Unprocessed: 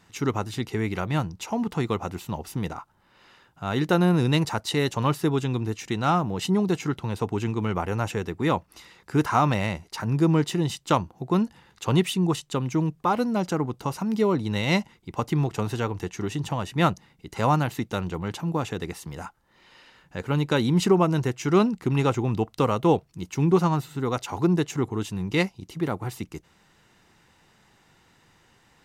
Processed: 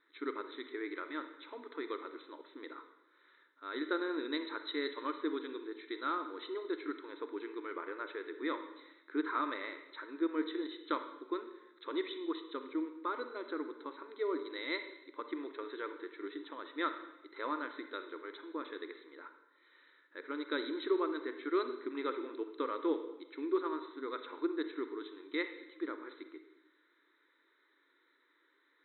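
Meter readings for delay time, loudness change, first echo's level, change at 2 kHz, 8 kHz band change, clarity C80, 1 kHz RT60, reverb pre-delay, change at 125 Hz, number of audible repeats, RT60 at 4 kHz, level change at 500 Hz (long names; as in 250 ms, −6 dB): no echo audible, −14.0 dB, no echo audible, −9.0 dB, below −40 dB, 11.5 dB, 0.90 s, 36 ms, below −40 dB, no echo audible, 0.90 s, −12.0 dB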